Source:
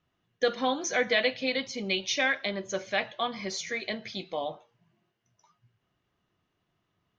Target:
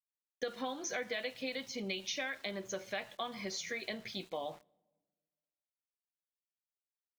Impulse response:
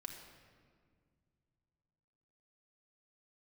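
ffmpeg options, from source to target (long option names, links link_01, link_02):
-filter_complex "[0:a]acompressor=threshold=-31dB:ratio=6,aeval=exprs='val(0)*gte(abs(val(0)),0.00282)':channel_layout=same,asplit=2[link_01][link_02];[1:a]atrim=start_sample=2205,asetrate=83790,aresample=44100[link_03];[link_02][link_03]afir=irnorm=-1:irlink=0,volume=-13.5dB[link_04];[link_01][link_04]amix=inputs=2:normalize=0,volume=-4.5dB"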